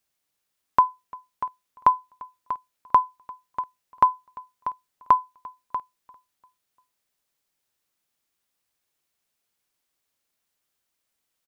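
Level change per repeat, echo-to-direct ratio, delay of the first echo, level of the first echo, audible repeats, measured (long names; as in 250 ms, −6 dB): −7.0 dB, −22.0 dB, 346 ms, −23.0 dB, 2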